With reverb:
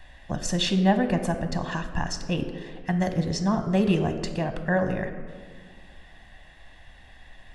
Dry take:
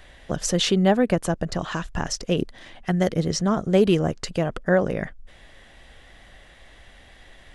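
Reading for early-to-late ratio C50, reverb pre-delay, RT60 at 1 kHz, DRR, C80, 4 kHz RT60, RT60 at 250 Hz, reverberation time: 9.5 dB, 3 ms, 1.6 s, 7.5 dB, 10.5 dB, 1.0 s, 2.3 s, 1.8 s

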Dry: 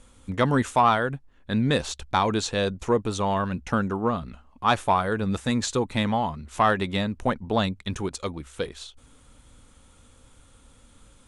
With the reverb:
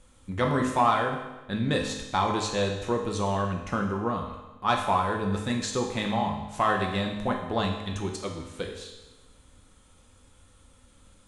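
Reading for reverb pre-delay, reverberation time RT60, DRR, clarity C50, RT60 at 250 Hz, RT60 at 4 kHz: 4 ms, 1.1 s, 1.0 dB, 5.0 dB, 1.1 s, 1.1 s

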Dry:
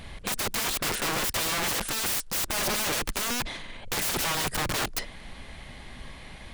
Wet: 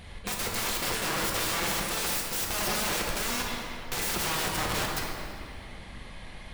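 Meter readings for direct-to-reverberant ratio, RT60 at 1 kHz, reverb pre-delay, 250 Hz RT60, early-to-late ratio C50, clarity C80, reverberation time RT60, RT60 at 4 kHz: −1.5 dB, 2.5 s, 3 ms, 2.8 s, 1.0 dB, 2.5 dB, 2.6 s, 1.6 s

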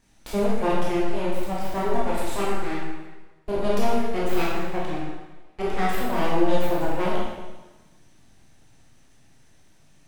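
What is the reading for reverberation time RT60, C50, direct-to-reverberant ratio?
1.2 s, −1.0 dB, −6.0 dB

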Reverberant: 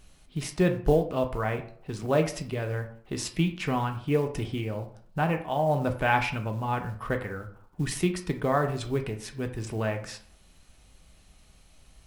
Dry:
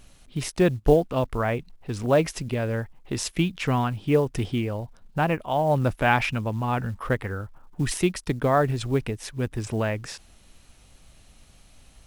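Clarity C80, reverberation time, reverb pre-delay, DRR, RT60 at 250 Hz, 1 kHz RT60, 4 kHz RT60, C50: 14.5 dB, 0.55 s, 3 ms, 4.5 dB, 0.55 s, 0.55 s, 0.30 s, 11.5 dB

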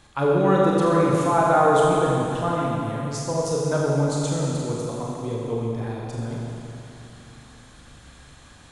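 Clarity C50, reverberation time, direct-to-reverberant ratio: −1.5 dB, 2.9 s, −4.0 dB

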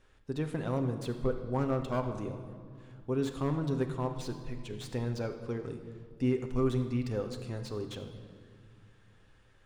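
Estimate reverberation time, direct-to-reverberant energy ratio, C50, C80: 2.3 s, 5.0 dB, 8.0 dB, 9.0 dB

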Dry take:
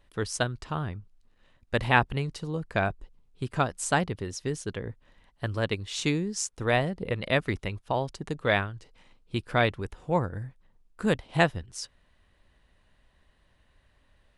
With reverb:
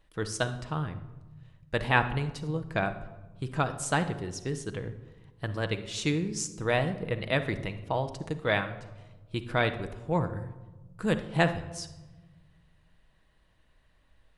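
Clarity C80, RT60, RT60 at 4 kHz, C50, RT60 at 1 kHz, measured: 14.5 dB, 1.2 s, 0.70 s, 11.5 dB, 1.1 s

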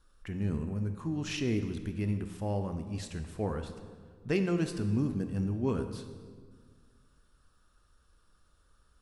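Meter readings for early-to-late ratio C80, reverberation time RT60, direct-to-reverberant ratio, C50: 10.0 dB, 1.8 s, 7.5 dB, 9.0 dB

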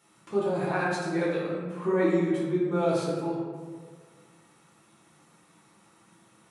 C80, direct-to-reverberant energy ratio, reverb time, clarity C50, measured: 2.0 dB, −7.5 dB, 1.7 s, −0.5 dB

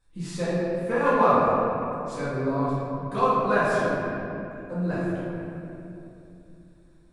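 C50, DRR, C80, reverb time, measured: −4.0 dB, −12.5 dB, −2.0 dB, 2.8 s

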